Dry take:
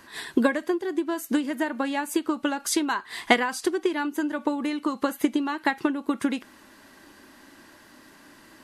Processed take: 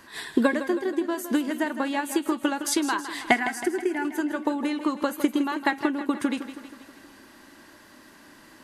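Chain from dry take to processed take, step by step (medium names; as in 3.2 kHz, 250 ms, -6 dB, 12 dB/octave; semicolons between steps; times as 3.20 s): 3.31–4.05 s: static phaser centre 750 Hz, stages 8; modulated delay 160 ms, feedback 57%, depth 53 cents, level -11.5 dB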